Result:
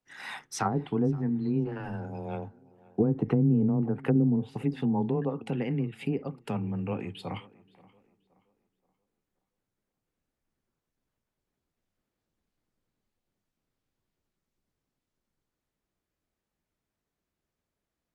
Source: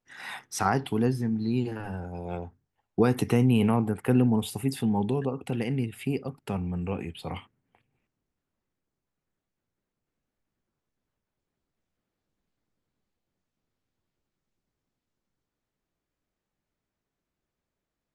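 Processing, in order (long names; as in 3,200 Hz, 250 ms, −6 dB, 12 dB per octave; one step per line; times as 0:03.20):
treble cut that deepens with the level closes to 380 Hz, closed at −19 dBFS
tape delay 526 ms, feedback 38%, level −21.5 dB, low-pass 2,800 Hz
frequency shifter +14 Hz
level −1 dB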